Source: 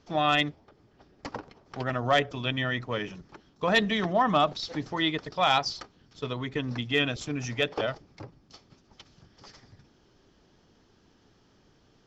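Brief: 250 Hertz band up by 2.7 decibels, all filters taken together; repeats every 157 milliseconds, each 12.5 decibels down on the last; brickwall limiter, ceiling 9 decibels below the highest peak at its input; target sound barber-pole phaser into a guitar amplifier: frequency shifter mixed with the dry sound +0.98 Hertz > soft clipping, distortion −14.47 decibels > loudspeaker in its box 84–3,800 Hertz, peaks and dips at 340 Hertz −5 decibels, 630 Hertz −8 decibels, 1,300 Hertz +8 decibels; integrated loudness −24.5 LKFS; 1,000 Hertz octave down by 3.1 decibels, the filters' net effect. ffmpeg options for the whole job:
ffmpeg -i in.wav -filter_complex "[0:a]equalizer=frequency=250:width_type=o:gain=5.5,equalizer=frequency=1000:width_type=o:gain=-7.5,alimiter=limit=-20.5dB:level=0:latency=1,aecho=1:1:157|314|471:0.237|0.0569|0.0137,asplit=2[link_01][link_02];[link_02]afreqshift=0.98[link_03];[link_01][link_03]amix=inputs=2:normalize=1,asoftclip=threshold=-28.5dB,highpass=84,equalizer=frequency=340:width_type=q:width=4:gain=-5,equalizer=frequency=630:width_type=q:width=4:gain=-8,equalizer=frequency=1300:width_type=q:width=4:gain=8,lowpass=frequency=3800:width=0.5412,lowpass=frequency=3800:width=1.3066,volume=13.5dB" out.wav

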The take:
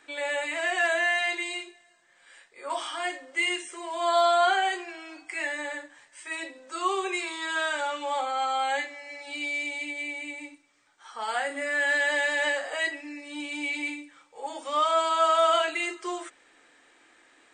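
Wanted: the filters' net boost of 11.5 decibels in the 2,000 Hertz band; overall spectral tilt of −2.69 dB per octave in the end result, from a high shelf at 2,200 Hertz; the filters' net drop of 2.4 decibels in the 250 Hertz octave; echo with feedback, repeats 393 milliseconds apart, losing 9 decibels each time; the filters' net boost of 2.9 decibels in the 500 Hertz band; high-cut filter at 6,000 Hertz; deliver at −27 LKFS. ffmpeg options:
ffmpeg -i in.wav -af "lowpass=6000,equalizer=frequency=250:width_type=o:gain=-6.5,equalizer=frequency=500:width_type=o:gain=3.5,equalizer=frequency=2000:width_type=o:gain=9,highshelf=frequency=2200:gain=9,aecho=1:1:393|786|1179|1572:0.355|0.124|0.0435|0.0152,volume=-8.5dB" out.wav

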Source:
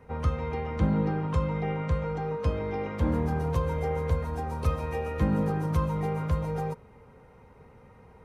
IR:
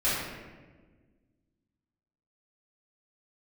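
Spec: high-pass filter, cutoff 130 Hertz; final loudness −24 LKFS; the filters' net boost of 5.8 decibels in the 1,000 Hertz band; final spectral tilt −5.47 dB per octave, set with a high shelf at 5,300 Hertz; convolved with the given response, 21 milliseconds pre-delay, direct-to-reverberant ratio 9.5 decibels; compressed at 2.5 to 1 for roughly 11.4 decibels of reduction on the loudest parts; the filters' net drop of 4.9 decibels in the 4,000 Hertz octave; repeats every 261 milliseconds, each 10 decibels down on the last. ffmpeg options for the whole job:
-filter_complex "[0:a]highpass=130,equalizer=frequency=1000:width_type=o:gain=7.5,equalizer=frequency=4000:width_type=o:gain=-5.5,highshelf=frequency=5300:gain=-5,acompressor=threshold=-40dB:ratio=2.5,aecho=1:1:261|522|783|1044:0.316|0.101|0.0324|0.0104,asplit=2[link_01][link_02];[1:a]atrim=start_sample=2205,adelay=21[link_03];[link_02][link_03]afir=irnorm=-1:irlink=0,volume=-21.5dB[link_04];[link_01][link_04]amix=inputs=2:normalize=0,volume=14dB"

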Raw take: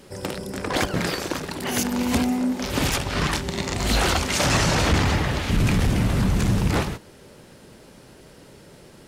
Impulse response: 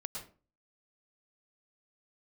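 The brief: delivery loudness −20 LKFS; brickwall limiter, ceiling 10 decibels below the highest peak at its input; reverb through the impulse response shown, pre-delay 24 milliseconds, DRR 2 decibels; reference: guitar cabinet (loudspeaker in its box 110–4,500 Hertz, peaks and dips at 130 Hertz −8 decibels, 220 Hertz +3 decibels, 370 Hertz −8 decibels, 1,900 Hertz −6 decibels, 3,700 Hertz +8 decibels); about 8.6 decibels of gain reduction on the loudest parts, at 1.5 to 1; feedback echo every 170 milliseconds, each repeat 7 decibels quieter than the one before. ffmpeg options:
-filter_complex "[0:a]acompressor=threshold=-41dB:ratio=1.5,alimiter=level_in=3dB:limit=-24dB:level=0:latency=1,volume=-3dB,aecho=1:1:170|340|510|680|850:0.447|0.201|0.0905|0.0407|0.0183,asplit=2[link_01][link_02];[1:a]atrim=start_sample=2205,adelay=24[link_03];[link_02][link_03]afir=irnorm=-1:irlink=0,volume=-1.5dB[link_04];[link_01][link_04]amix=inputs=2:normalize=0,highpass=110,equalizer=frequency=130:width_type=q:width=4:gain=-8,equalizer=frequency=220:width_type=q:width=4:gain=3,equalizer=frequency=370:width_type=q:width=4:gain=-8,equalizer=frequency=1900:width_type=q:width=4:gain=-6,equalizer=frequency=3700:width_type=q:width=4:gain=8,lowpass=frequency=4500:width=0.5412,lowpass=frequency=4500:width=1.3066,volume=14dB"

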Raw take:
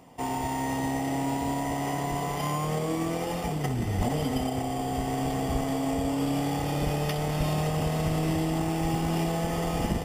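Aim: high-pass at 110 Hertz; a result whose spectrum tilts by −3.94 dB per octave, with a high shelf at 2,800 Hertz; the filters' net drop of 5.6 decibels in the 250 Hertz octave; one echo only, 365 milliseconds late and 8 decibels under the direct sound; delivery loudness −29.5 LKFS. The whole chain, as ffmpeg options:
ffmpeg -i in.wav -af "highpass=110,equalizer=frequency=250:width_type=o:gain=-7.5,highshelf=frequency=2800:gain=8.5,aecho=1:1:365:0.398,volume=-0.5dB" out.wav

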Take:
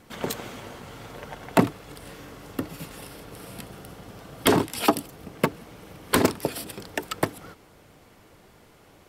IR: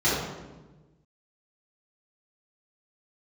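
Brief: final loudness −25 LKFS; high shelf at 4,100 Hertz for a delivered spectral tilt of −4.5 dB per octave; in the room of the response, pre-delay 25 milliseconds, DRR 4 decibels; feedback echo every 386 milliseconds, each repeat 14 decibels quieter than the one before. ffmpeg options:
-filter_complex "[0:a]highshelf=frequency=4100:gain=5,aecho=1:1:386|772:0.2|0.0399,asplit=2[link_01][link_02];[1:a]atrim=start_sample=2205,adelay=25[link_03];[link_02][link_03]afir=irnorm=-1:irlink=0,volume=-20dB[link_04];[link_01][link_04]amix=inputs=2:normalize=0,volume=-0.5dB"

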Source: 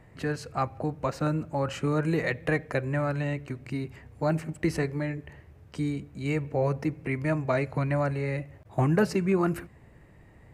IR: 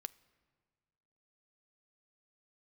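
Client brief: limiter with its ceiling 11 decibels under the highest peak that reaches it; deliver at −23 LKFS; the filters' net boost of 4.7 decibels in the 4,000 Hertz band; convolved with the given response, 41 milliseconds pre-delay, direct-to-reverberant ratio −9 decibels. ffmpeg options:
-filter_complex "[0:a]equalizer=frequency=4000:width_type=o:gain=6,alimiter=limit=-23dB:level=0:latency=1,asplit=2[link_01][link_02];[1:a]atrim=start_sample=2205,adelay=41[link_03];[link_02][link_03]afir=irnorm=-1:irlink=0,volume=13dB[link_04];[link_01][link_04]amix=inputs=2:normalize=0,volume=1dB"

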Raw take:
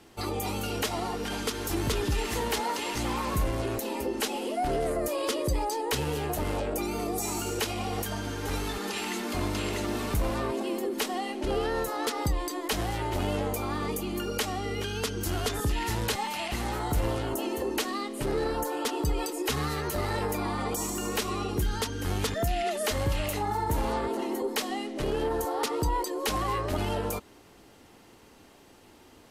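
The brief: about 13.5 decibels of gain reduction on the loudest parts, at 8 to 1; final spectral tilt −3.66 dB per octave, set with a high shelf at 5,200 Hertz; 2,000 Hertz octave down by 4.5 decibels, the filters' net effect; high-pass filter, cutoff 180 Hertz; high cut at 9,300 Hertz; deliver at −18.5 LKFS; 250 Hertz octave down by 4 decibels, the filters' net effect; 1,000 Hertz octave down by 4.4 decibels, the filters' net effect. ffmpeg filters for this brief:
ffmpeg -i in.wav -af "highpass=180,lowpass=9300,equalizer=frequency=250:width_type=o:gain=-4,equalizer=frequency=1000:width_type=o:gain=-4.5,equalizer=frequency=2000:width_type=o:gain=-5.5,highshelf=frequency=5200:gain=6.5,acompressor=threshold=-41dB:ratio=8,volume=25dB" out.wav

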